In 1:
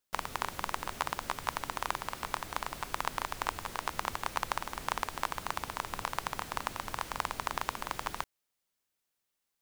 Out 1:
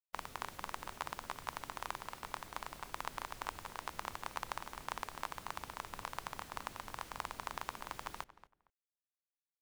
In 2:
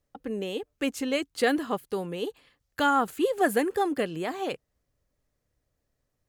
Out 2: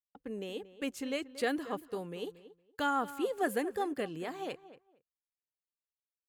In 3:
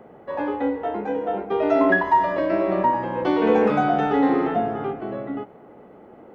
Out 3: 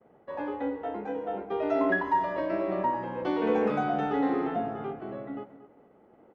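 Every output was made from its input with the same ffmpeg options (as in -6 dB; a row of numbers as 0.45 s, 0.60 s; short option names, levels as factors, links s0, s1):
-filter_complex "[0:a]agate=range=0.0224:threshold=0.00891:ratio=3:detection=peak,asplit=2[s0][s1];[s1]adelay=231,lowpass=f=2200:p=1,volume=0.178,asplit=2[s2][s3];[s3]adelay=231,lowpass=f=2200:p=1,volume=0.19[s4];[s0][s2][s4]amix=inputs=3:normalize=0,volume=0.398"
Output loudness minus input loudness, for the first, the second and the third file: -8.0 LU, -8.0 LU, -8.0 LU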